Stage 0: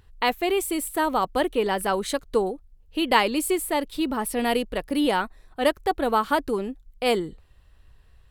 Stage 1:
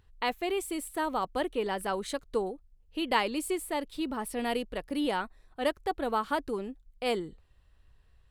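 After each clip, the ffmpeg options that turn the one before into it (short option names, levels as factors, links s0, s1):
-af "equalizer=f=15000:w=1.6:g=-12,volume=0.422"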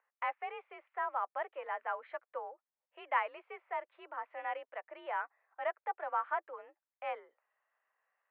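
-af "highpass=f=590:t=q:w=0.5412,highpass=f=590:t=q:w=1.307,lowpass=f=2200:t=q:w=0.5176,lowpass=f=2200:t=q:w=0.7071,lowpass=f=2200:t=q:w=1.932,afreqshift=52,volume=0.668"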